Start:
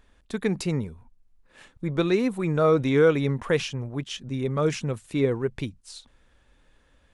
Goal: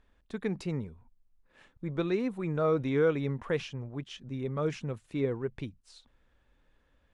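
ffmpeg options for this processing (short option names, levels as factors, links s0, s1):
-af "aemphasis=mode=reproduction:type=50kf,volume=0.447"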